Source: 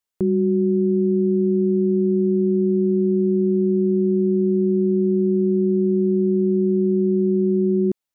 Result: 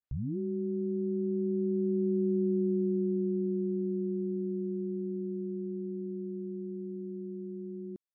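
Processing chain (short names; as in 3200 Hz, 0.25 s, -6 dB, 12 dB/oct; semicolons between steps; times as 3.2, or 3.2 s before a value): tape start at the beginning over 0.38 s; Doppler pass-by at 2.42, 5 m/s, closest 3.4 m; compressor 2:1, threshold -26 dBFS, peak gain reduction 5.5 dB; gain -4 dB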